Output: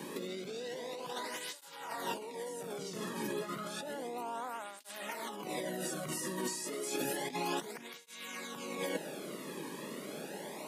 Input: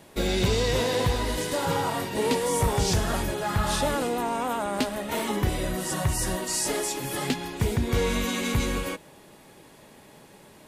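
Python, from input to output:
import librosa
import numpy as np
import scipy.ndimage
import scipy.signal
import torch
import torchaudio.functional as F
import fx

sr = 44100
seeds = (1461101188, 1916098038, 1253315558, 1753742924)

y = scipy.signal.sosfilt(scipy.signal.butter(8, 150.0, 'highpass', fs=sr, output='sos'), x)
y = fx.low_shelf(y, sr, hz=280.0, db=3.0)
y = fx.over_compress(y, sr, threshold_db=-37.0, ratio=-1.0)
y = fx.flanger_cancel(y, sr, hz=0.31, depth_ms=1.5)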